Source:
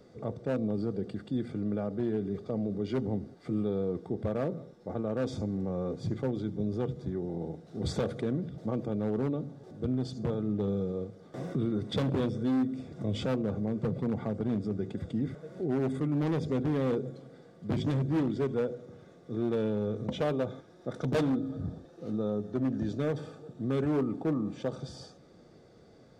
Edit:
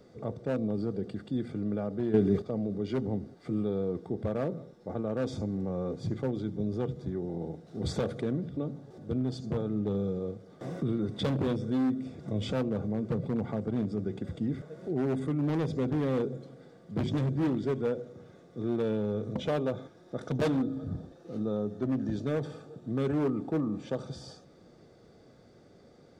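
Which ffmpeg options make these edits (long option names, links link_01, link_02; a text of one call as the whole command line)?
ffmpeg -i in.wav -filter_complex "[0:a]asplit=4[link_01][link_02][link_03][link_04];[link_01]atrim=end=2.142[link_05];[link_02]atrim=start=2.138:end=2.422,asetpts=PTS-STARTPTS,volume=8.5dB[link_06];[link_03]atrim=start=2.418:end=8.572[link_07];[link_04]atrim=start=9.298[link_08];[link_05][link_06]acrossfade=duration=0.004:curve1=hsin:curve2=hsin[link_09];[link_09][link_07]acrossfade=duration=0.004:curve1=hsin:curve2=hsin[link_10];[link_10][link_08]acrossfade=duration=0.004:curve1=hsin:curve2=hsin" out.wav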